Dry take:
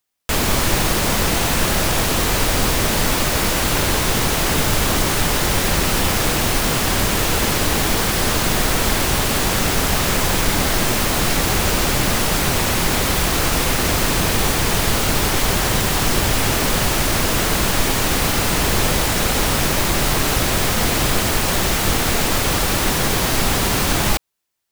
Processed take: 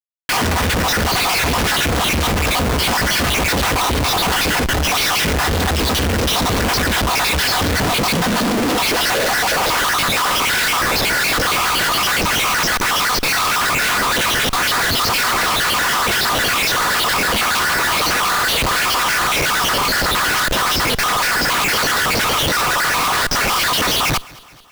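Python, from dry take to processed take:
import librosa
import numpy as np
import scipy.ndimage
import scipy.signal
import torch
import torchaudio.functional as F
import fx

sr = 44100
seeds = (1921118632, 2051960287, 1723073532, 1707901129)

p1 = fx.spec_dropout(x, sr, seeds[0], share_pct=56)
p2 = scipy.signal.sosfilt(scipy.signal.butter(12, 6000.0, 'lowpass', fs=sr, output='sos'), p1)
p3 = p2 + 0.45 * np.pad(p2, (int(4.1 * sr / 1000.0), 0))[:len(p2)]
p4 = fx.over_compress(p3, sr, threshold_db=-23.0, ratio=-0.5)
p5 = p3 + (p4 * 10.0 ** (0.0 / 20.0))
p6 = fx.filter_sweep_highpass(p5, sr, from_hz=74.0, to_hz=1200.0, start_s=7.58, end_s=9.88, q=2.5)
p7 = fx.schmitt(p6, sr, flips_db=-25.5)
y = p7 + fx.echo_feedback(p7, sr, ms=214, feedback_pct=56, wet_db=-23.0, dry=0)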